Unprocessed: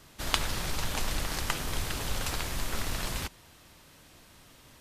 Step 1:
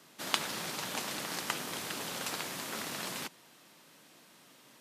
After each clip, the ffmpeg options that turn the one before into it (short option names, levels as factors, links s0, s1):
-af "highpass=f=170:w=0.5412,highpass=f=170:w=1.3066,volume=0.75"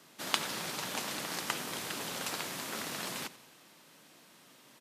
-af "aecho=1:1:89|178|267|356|445:0.126|0.073|0.0424|0.0246|0.0142"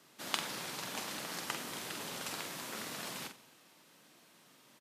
-filter_complex "[0:a]asplit=2[s0][s1];[s1]adelay=46,volume=0.447[s2];[s0][s2]amix=inputs=2:normalize=0,volume=0.596"